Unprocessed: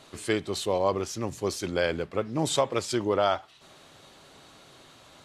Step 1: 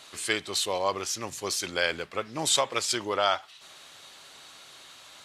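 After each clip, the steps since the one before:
tilt shelving filter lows −8.5 dB, about 750 Hz
level −1.5 dB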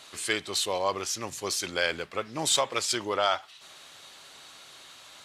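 soft clipping −10.5 dBFS, distortion −26 dB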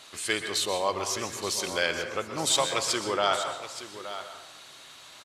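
single-tap delay 872 ms −12.5 dB
dense smooth reverb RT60 0.87 s, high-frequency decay 0.5×, pre-delay 110 ms, DRR 7 dB

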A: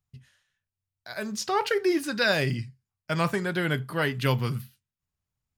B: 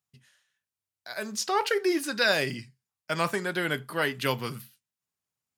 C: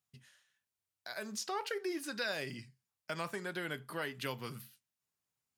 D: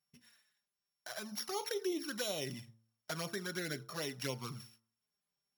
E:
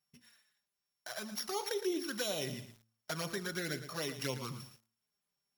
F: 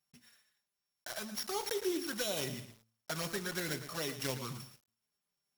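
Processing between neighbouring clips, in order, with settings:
Bessel high-pass filter 270 Hz, order 2; parametric band 9,800 Hz +3.5 dB 1.5 octaves
downward compressor 2 to 1, threshold −43 dBFS, peak gain reduction 13 dB; level −1 dB
samples sorted by size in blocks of 8 samples; flanger swept by the level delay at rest 5.1 ms, full sweep at −33.5 dBFS; hum removal 112.7 Hz, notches 13; level +2.5 dB
feedback echo at a low word length 114 ms, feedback 35%, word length 9 bits, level −10.5 dB; level +1.5 dB
one scale factor per block 3 bits

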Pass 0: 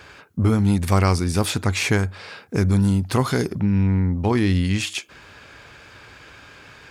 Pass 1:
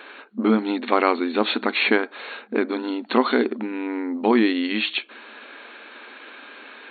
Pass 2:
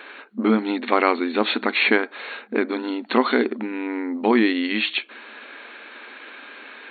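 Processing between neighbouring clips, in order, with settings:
brick-wall band-pass 210–4,400 Hz; level +3.5 dB
parametric band 2,000 Hz +3.5 dB 0.62 octaves

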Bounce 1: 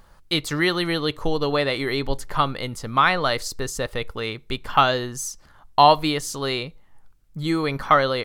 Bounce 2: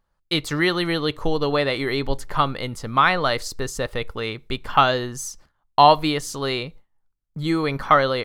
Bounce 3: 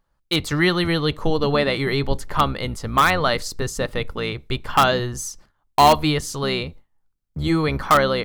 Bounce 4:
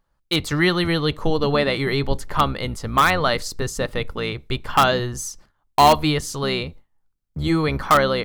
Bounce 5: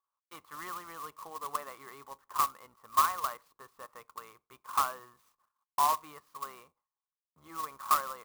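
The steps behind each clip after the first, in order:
noise gate with hold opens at −37 dBFS; parametric band 14,000 Hz −3.5 dB 2 octaves; level +1 dB
sub-octave generator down 1 octave, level −3 dB; in parallel at −10 dB: wrap-around overflow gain 8 dB; on the sum: level −1 dB
no processing that can be heard
resonant band-pass 1,100 Hz, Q 9.9; converter with an unsteady clock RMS 0.045 ms; level −3 dB

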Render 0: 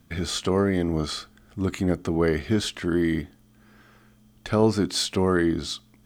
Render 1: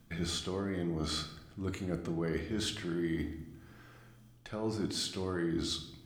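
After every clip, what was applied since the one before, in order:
reversed playback
downward compressor 6 to 1, threshold −30 dBFS, peak gain reduction 14.5 dB
reversed playback
convolution reverb RT60 0.90 s, pre-delay 6 ms, DRR 5 dB
level −3.5 dB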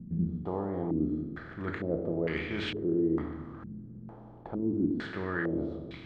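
compressor on every frequency bin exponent 0.6
low-pass on a step sequencer 2.2 Hz 200–2,400 Hz
level −2.5 dB

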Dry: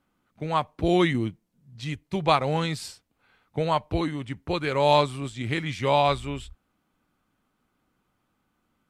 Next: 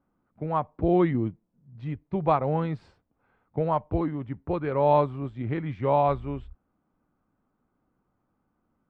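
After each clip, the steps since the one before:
low-pass filter 1,100 Hz 12 dB per octave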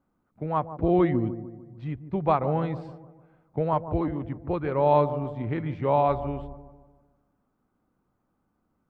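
delay with a low-pass on its return 150 ms, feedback 47%, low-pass 880 Hz, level −11 dB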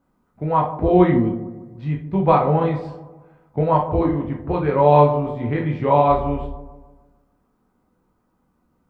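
convolution reverb RT60 0.30 s, pre-delay 6 ms, DRR −0.5 dB
level +4.5 dB

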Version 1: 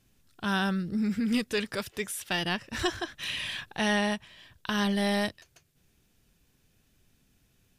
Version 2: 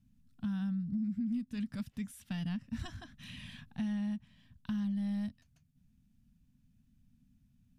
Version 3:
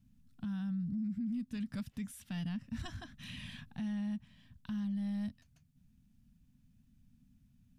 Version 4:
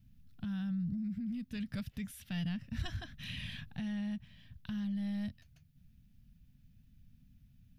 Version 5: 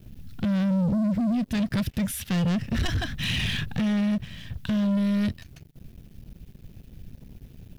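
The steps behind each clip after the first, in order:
drawn EQ curve 110 Hz 0 dB, 250 Hz +5 dB, 360 Hz −28 dB, 670 Hz −17 dB; downward compressor 6 to 1, threshold −33 dBFS, peak gain reduction 12.5 dB
brickwall limiter −33.5 dBFS, peak gain reduction 7 dB; level +1.5 dB
octave-band graphic EQ 250/1,000/8,000 Hz −9/−9/−10 dB; level +6.5 dB
leveller curve on the samples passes 3; level +7 dB

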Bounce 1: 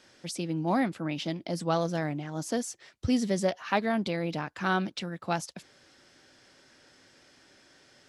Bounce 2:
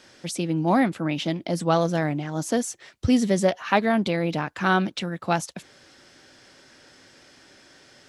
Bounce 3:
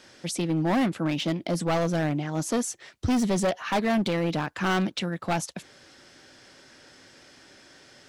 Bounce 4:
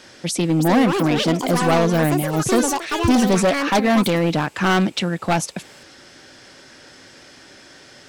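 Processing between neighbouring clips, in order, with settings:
dynamic equaliser 4,900 Hz, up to −5 dB, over −57 dBFS, Q 3.6; level +6.5 dB
gain into a clipping stage and back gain 20.5 dB
delay with pitch and tempo change per echo 431 ms, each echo +7 semitones, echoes 2, each echo −6 dB; level +7.5 dB

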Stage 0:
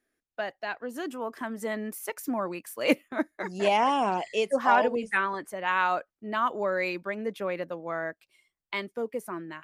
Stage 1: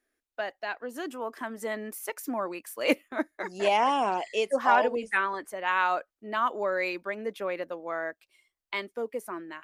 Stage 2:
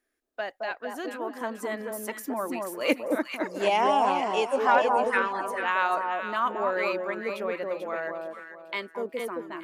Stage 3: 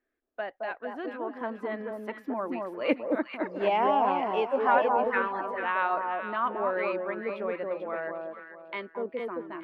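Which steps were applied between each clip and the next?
parametric band 150 Hz −13 dB 0.81 octaves
delay that swaps between a low-pass and a high-pass 220 ms, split 1,100 Hz, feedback 53%, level −2 dB
high-frequency loss of the air 400 metres

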